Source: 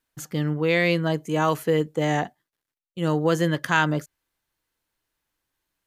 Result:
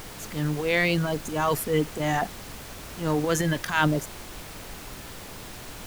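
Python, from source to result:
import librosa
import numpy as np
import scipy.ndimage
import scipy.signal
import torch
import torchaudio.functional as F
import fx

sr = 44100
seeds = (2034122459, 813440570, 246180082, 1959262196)

y = fx.dereverb_blind(x, sr, rt60_s=1.6)
y = fx.transient(y, sr, attack_db=-10, sustain_db=9)
y = fx.dmg_noise_colour(y, sr, seeds[0], colour='pink', level_db=-40.0)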